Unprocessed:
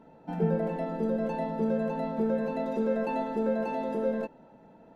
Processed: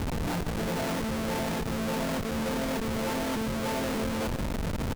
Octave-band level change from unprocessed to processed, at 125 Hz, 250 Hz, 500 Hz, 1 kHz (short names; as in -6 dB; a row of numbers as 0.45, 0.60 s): +4.0, 0.0, -3.5, +1.0 dB